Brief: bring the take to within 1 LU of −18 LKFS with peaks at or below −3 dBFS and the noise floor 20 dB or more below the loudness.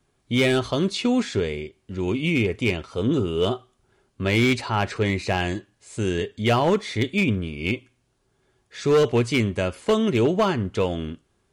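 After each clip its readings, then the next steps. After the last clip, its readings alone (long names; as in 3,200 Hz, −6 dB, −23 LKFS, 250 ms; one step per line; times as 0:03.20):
share of clipped samples 0.8%; peaks flattened at −13.5 dBFS; integrated loudness −23.5 LKFS; sample peak −13.5 dBFS; target loudness −18.0 LKFS
→ clipped peaks rebuilt −13.5 dBFS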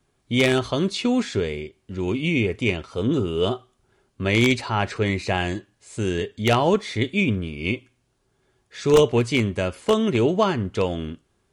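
share of clipped samples 0.0%; integrated loudness −22.5 LKFS; sample peak −4.5 dBFS; target loudness −18.0 LKFS
→ level +4.5 dB
brickwall limiter −3 dBFS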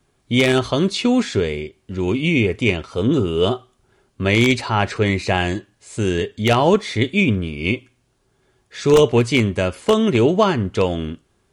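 integrated loudness −18.5 LKFS; sample peak −3.0 dBFS; background noise floor −65 dBFS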